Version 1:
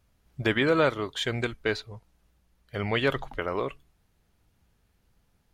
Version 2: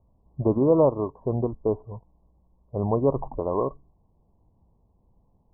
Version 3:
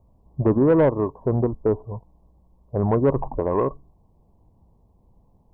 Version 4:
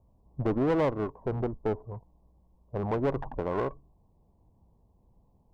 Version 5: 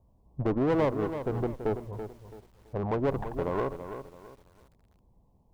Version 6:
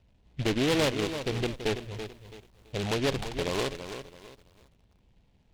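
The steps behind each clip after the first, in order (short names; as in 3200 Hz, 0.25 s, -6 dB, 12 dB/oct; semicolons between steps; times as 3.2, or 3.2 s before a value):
Chebyshev low-pass 1100 Hz, order 8; gain +5.5 dB
dynamic EQ 670 Hz, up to -4 dB, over -31 dBFS, Q 2.3; soft clip -15.5 dBFS, distortion -17 dB; gain +5.5 dB
one diode to ground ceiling -27.5 dBFS; gain -5.5 dB
lo-fi delay 0.332 s, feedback 35%, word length 9-bit, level -9.5 dB
median filter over 15 samples; noise-modulated delay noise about 2500 Hz, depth 0.15 ms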